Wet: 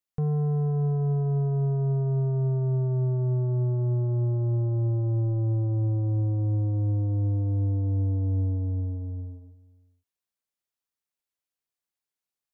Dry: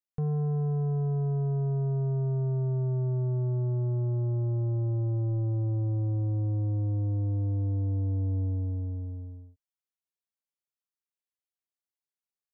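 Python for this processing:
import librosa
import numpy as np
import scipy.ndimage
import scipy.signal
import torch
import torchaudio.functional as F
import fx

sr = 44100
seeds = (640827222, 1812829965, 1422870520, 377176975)

y = x + 10.0 ** (-21.0 / 20.0) * np.pad(x, (int(478 * sr / 1000.0), 0))[:len(x)]
y = y * 10.0 ** (3.0 / 20.0)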